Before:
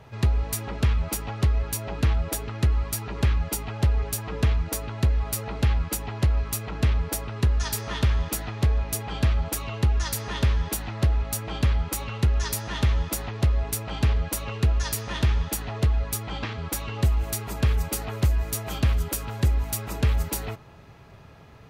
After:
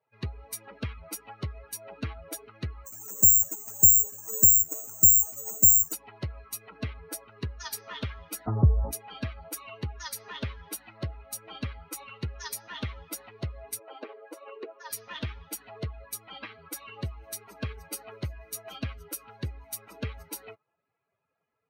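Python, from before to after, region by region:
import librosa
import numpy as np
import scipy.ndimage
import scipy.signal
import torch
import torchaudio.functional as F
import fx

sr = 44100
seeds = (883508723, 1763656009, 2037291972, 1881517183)

y = fx.chain(x, sr, fx.lowpass(hz=1200.0, slope=6),
    fx.resample_bad(factor=6, down='filtered', up='zero_stuff'), at=(2.86, 5.93))
y = fx.chain(y, sr, fx.lowpass(hz=1300.0, slope=24),
    fx.low_shelf(hz=230.0, db=8.5),
    fx.env_flatten(amount_pct=50), at=(8.46, 8.91))
y = fx.chain(y, sr, fx.highpass(hz=340.0, slope=24),
    fx.tilt_eq(slope=-3.0), at=(13.79, 14.9))
y = fx.bin_expand(y, sr, power=2.0)
y = scipy.signal.sosfilt(scipy.signal.butter(4, 71.0, 'highpass', fs=sr, output='sos'), y)
y = y * 10.0 ** (-2.0 / 20.0)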